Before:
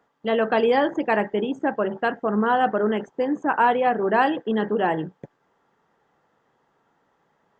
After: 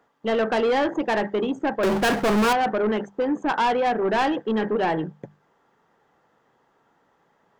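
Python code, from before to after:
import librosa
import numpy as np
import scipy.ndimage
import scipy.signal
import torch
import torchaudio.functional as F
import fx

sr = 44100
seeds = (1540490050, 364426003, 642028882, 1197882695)

y = fx.hum_notches(x, sr, base_hz=50, count=4)
y = fx.power_curve(y, sr, exponent=0.5, at=(1.83, 2.53))
y = 10.0 ** (-19.5 / 20.0) * np.tanh(y / 10.0 ** (-19.5 / 20.0))
y = F.gain(torch.from_numpy(y), 2.5).numpy()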